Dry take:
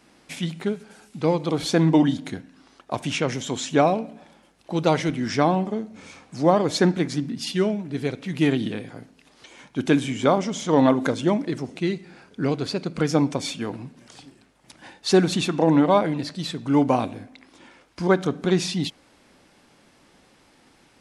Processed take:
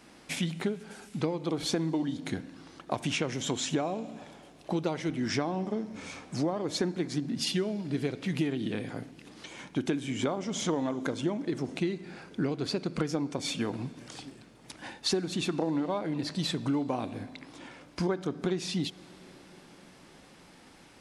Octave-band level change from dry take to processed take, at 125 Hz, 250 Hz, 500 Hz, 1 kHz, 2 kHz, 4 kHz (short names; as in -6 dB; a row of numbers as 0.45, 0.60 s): -8.5, -8.5, -10.5, -12.5, -8.0, -4.5 dB